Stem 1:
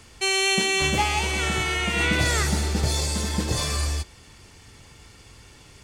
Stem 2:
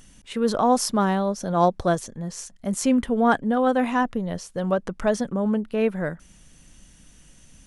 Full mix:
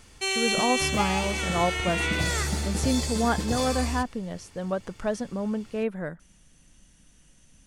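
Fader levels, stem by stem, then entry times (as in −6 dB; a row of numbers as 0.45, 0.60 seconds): −4.5, −6.0 decibels; 0.00, 0.00 seconds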